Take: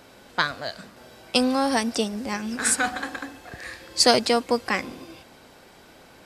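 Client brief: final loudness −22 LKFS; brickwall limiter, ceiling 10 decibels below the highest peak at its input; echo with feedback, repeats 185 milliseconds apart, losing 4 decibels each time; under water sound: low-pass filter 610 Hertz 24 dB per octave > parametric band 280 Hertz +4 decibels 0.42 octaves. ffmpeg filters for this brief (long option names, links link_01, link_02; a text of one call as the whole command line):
ffmpeg -i in.wav -af "alimiter=limit=-14dB:level=0:latency=1,lowpass=frequency=610:width=0.5412,lowpass=frequency=610:width=1.3066,equalizer=frequency=280:width_type=o:width=0.42:gain=4,aecho=1:1:185|370|555|740|925|1110|1295|1480|1665:0.631|0.398|0.25|0.158|0.0994|0.0626|0.0394|0.0249|0.0157,volume=5.5dB" out.wav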